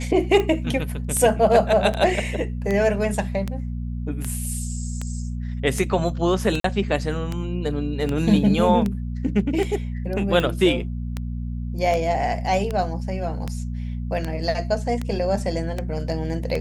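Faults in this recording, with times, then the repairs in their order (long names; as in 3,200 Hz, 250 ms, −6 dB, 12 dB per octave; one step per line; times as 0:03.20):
mains hum 60 Hz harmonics 4 −28 dBFS
scratch tick 78 rpm −13 dBFS
0:06.60–0:06.64: drop-out 43 ms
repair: click removal
hum removal 60 Hz, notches 4
repair the gap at 0:06.60, 43 ms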